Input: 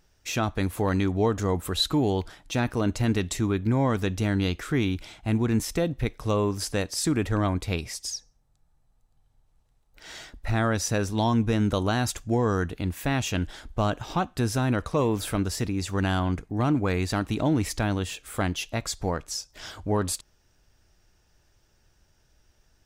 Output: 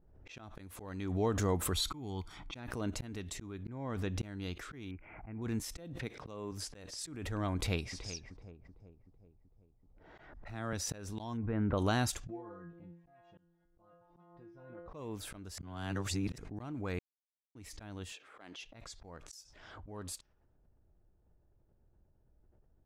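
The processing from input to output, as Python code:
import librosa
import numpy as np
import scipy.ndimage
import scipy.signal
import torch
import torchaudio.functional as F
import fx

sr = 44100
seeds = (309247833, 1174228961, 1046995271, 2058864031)

y = fx.comb(x, sr, ms=0.9, depth=0.6, at=(1.72, 2.55), fade=0.02)
y = fx.high_shelf(y, sr, hz=5600.0, db=-10.0, at=(3.63, 4.23))
y = fx.ellip_lowpass(y, sr, hz=2400.0, order=4, stop_db=40, at=(4.91, 5.42))
y = fx.highpass(y, sr, hz=120.0, slope=12, at=(5.96, 6.52))
y = fx.echo_throw(y, sr, start_s=7.54, length_s=0.58, ms=380, feedback_pct=55, wet_db=-12.5)
y = fx.band_squash(y, sr, depth_pct=40, at=(10.18, 10.73))
y = fx.lowpass(y, sr, hz=2000.0, slope=24, at=(11.36, 11.77), fade=0.02)
y = fx.stiff_resonator(y, sr, f0_hz=170.0, decay_s=0.53, stiffness=0.002, at=(12.27, 14.88))
y = fx.highpass(y, sr, hz=330.0, slope=12, at=(18.12, 18.63))
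y = fx.high_shelf(y, sr, hz=6000.0, db=11.5, at=(19.26, 19.9))
y = fx.edit(y, sr, fx.reverse_span(start_s=15.58, length_s=0.8),
    fx.silence(start_s=16.99, length_s=0.56), tone=tone)
y = fx.env_lowpass(y, sr, base_hz=570.0, full_db=-24.5)
y = fx.auto_swell(y, sr, attack_ms=638.0)
y = fx.pre_swell(y, sr, db_per_s=46.0)
y = y * librosa.db_to_amplitude(-6.0)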